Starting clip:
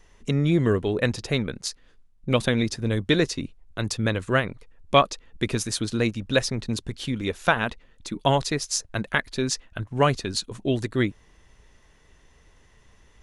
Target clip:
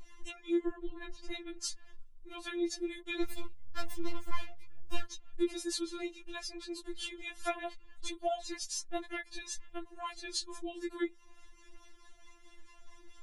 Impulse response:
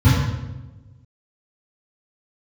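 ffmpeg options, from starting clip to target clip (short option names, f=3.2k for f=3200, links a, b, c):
-filter_complex "[0:a]asettb=1/sr,asplit=3[a][b][c];[a]atrim=end=0.684[d];[b]atrim=start=0.68:end=1.3,asetpts=PTS-STARTPTS,afade=t=in:d=0.004:c=qsin,afade=t=out:st=0.616:d=0.004:c=qsin,aemphasis=mode=reproduction:type=bsi[e];[c]atrim=start=1.296[f];[d][e]acrossfade=d=0.004:c1=hsin:c2=qsin[g];[g][f]acrossfade=d=0.004:c1=qsin:c2=hsin,acompressor=threshold=-34dB:ratio=4,acrossover=split=740[h][i];[h]aeval=exprs='val(0)*(1-0.5/2+0.5/2*cos(2*PI*4.6*n/s))':c=same[j];[i]aeval=exprs='val(0)*(1-0.5/2-0.5/2*cos(2*PI*4.6*n/s))':c=same[k];[j][k]amix=inputs=2:normalize=0,asettb=1/sr,asplit=3[l][m][n];[l]atrim=end=3.224[o];[m]atrim=start=3.22:end=5.06,asetpts=PTS-STARTPTS,afade=t=in:d=0.004:c=qsin,afade=t=out:st=1.836:d=0.004:c=qsin,aeval=exprs='abs(val(0))':c=same[p];[n]atrim=start=5.056[q];[o][p]acrossfade=d=0.004:c1=hsin:c2=qsin[r];[r][q]acrossfade=d=0.004:c1=qsin:c2=hsin,flanger=delay=3.1:depth=7.9:regen=-22:speed=0.24:shape=triangular,afftfilt=real='re*4*eq(mod(b,16),0)':imag='im*4*eq(mod(b,16),0)':win_size=2048:overlap=0.75,volume=7dB"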